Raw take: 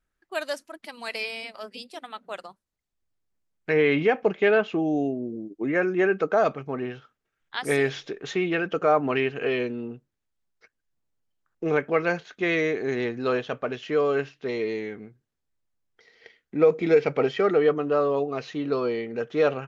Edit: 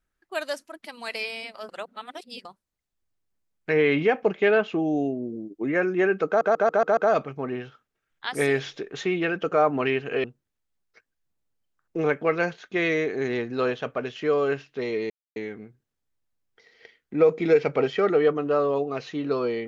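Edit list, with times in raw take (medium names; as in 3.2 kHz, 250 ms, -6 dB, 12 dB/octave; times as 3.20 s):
1.69–2.45 s: reverse
6.27 s: stutter 0.14 s, 6 plays
9.54–9.91 s: delete
14.77 s: insert silence 0.26 s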